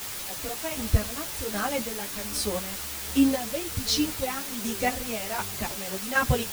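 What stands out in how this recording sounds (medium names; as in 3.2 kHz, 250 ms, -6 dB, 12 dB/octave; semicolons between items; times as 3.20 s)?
chopped level 1.3 Hz, depth 60%, duty 35%; a quantiser's noise floor 6-bit, dither triangular; a shimmering, thickened sound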